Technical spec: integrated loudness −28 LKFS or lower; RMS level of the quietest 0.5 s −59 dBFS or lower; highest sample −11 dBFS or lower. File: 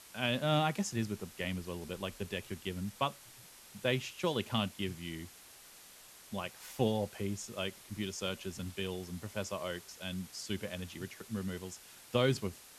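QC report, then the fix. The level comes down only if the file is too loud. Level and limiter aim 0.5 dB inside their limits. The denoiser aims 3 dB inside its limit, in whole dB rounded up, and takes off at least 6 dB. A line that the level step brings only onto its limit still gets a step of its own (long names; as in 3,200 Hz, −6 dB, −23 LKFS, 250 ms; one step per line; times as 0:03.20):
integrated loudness −37.0 LKFS: in spec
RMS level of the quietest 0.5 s −56 dBFS: out of spec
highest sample −15.0 dBFS: in spec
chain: broadband denoise 6 dB, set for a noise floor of −56 dBFS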